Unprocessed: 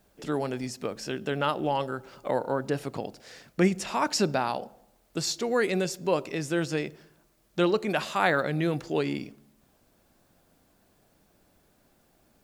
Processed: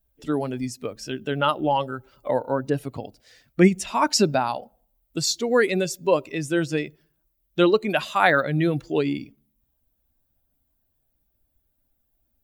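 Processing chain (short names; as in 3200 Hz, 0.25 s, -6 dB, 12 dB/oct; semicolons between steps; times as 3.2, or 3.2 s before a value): per-bin expansion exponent 1.5; gain +8 dB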